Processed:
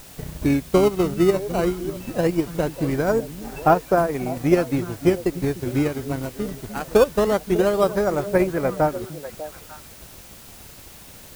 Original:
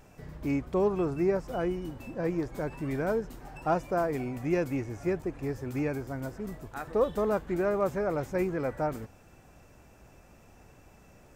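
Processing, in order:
in parallel at −7 dB: sample-and-hold swept by an LFO 15×, swing 160% 0.2 Hz
on the sum: transient designer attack +7 dB, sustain −8 dB
echo through a band-pass that steps 298 ms, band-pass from 190 Hz, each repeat 1.4 octaves, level −8.5 dB
background noise white −49 dBFS
level +4 dB

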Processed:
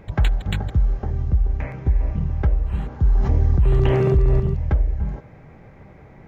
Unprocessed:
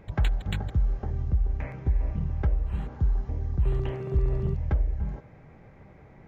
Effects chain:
0:03.04–0:04.40: envelope flattener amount 70%
level +6 dB

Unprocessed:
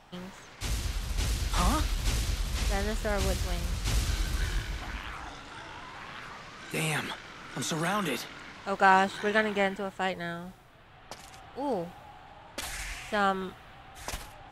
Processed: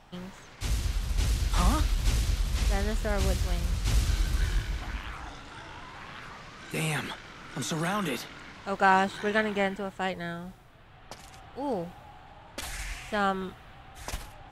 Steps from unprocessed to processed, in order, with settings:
low-shelf EQ 190 Hz +5 dB
level −1 dB

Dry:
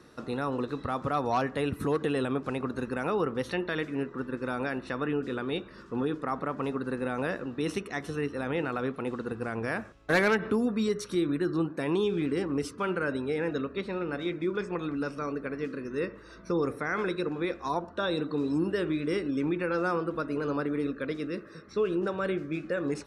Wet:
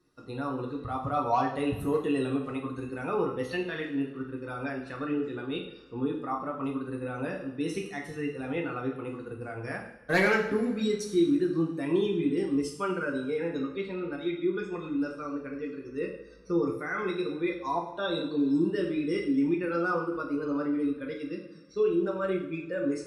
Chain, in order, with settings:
spectral dynamics exaggerated over time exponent 1.5
coupled-rooms reverb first 0.62 s, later 2.1 s, from −18 dB, DRR −1 dB

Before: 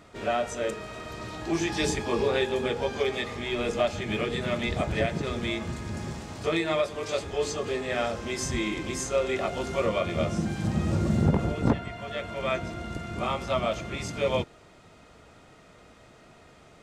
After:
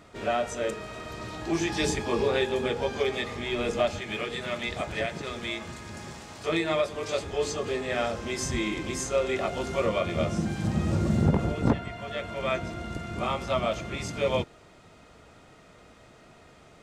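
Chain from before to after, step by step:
0:03.98–0:06.49: low-shelf EQ 430 Hz −9.5 dB

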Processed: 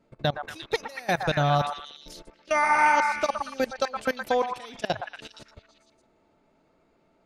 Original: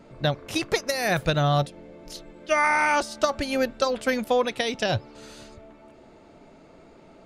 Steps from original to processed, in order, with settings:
dynamic equaliser 820 Hz, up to +6 dB, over −40 dBFS, Q 4.4
output level in coarse steps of 22 dB
echo through a band-pass that steps 117 ms, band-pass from 1,100 Hz, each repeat 0.7 octaves, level −1.5 dB

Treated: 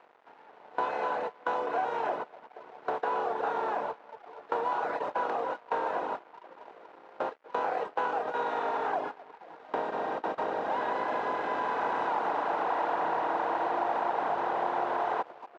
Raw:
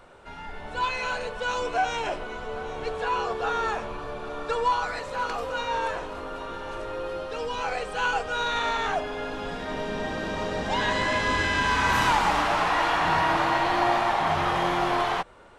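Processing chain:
compressor on every frequency bin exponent 0.4
noise gate with hold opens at −11 dBFS
tilt shelving filter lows +9.5 dB, about 1,100 Hz
feedback echo with a low-pass in the loop 238 ms, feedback 50%, low-pass 2,200 Hz, level −15 dB
reverb reduction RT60 0.84 s
downward compressor 3 to 1, threshold −25 dBFS, peak gain reduction 9.5 dB
dead-zone distortion −47 dBFS
band-pass filter 530–6,100 Hz
high-shelf EQ 2,100 Hz −9.5 dB

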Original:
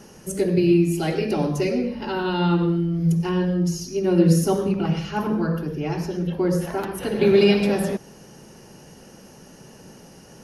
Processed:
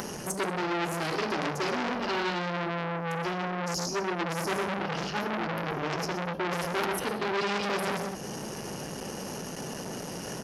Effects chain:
on a send: multi-tap delay 125/188 ms −12/−16.5 dB
on the sum: dynamic equaliser 4,900 Hz, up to +7 dB, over −51 dBFS, Q 2.4
reversed playback
downward compressor 12 to 1, threshold −28 dBFS, peak gain reduction 17.5 dB
reversed playback
low-shelf EQ 98 Hz −8 dB
upward compression, threshold −36 dBFS
saturating transformer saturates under 2,600 Hz
level +8.5 dB

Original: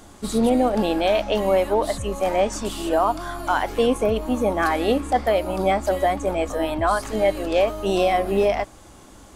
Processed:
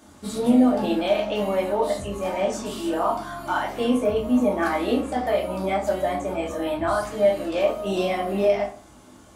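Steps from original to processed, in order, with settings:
high-pass filter 75 Hz 12 dB per octave
rectangular room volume 290 cubic metres, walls furnished, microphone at 2.6 metres
level −8 dB

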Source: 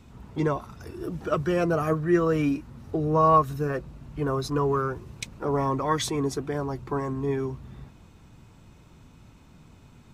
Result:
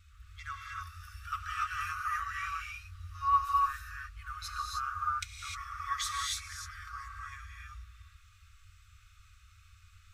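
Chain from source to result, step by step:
tape wow and flutter 22 cents
brick-wall band-stop 100–1,100 Hz
reverb whose tail is shaped and stops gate 330 ms rising, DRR −2.5 dB
level −5.5 dB

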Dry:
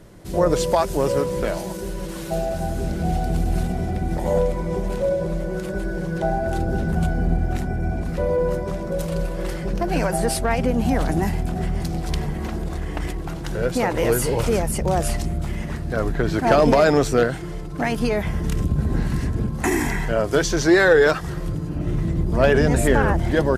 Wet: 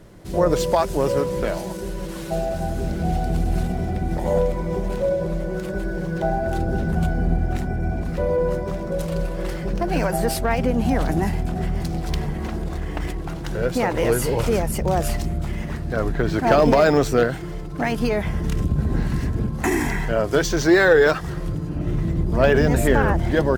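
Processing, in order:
linearly interpolated sample-rate reduction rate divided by 2×

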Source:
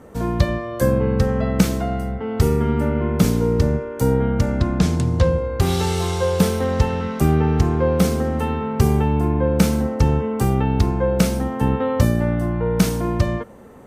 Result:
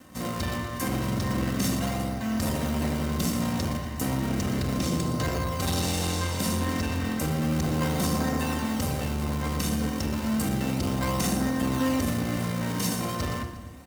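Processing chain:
lower of the sound and its delayed copy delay 1.1 ms
in parallel at −5 dB: sample-and-hold swept by an LFO 37×, swing 160% 0.33 Hz
on the sum: high-shelf EQ 2,400 Hz +10.5 dB
mains-hum notches 60/120/180 Hz
on a send: repeating echo 119 ms, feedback 51%, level −15 dB
on the sum: brickwall limiter −6 dBFS, peak gain reduction 10.5 dB
high-pass filter 52 Hz
notch comb filter 850 Hz
rectangular room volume 3,800 cubic metres, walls furnished, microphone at 2.1 metres
hard clipping −10 dBFS, distortion −22 dB
saturating transformer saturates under 170 Hz
level −7.5 dB

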